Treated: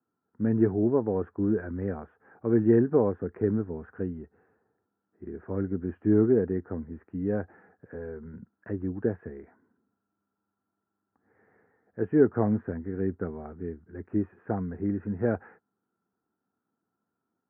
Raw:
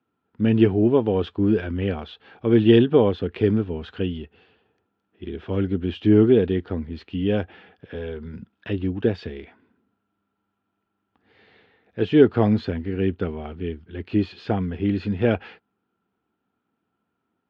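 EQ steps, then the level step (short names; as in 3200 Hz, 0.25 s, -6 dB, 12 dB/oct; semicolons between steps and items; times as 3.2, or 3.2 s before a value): HPF 87 Hz; steep low-pass 1800 Hz 48 dB/oct; air absorption 80 m; -6.0 dB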